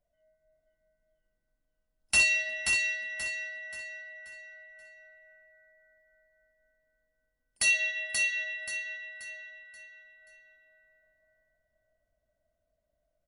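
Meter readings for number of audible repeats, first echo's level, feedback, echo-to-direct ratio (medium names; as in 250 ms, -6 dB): 4, -4.0 dB, 36%, -3.5 dB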